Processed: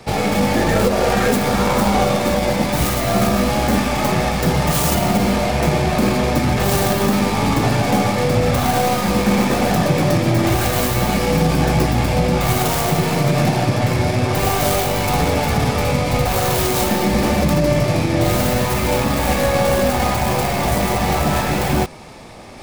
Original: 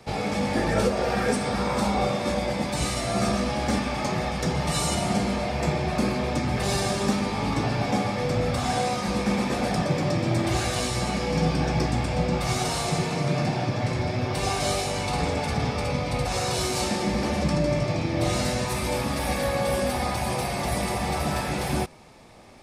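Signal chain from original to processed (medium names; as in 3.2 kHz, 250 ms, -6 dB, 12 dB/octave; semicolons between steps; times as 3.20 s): tracing distortion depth 0.39 ms; reverse; upward compressor, threshold -41 dBFS; reverse; loudness maximiser +14.5 dB; trim -5.5 dB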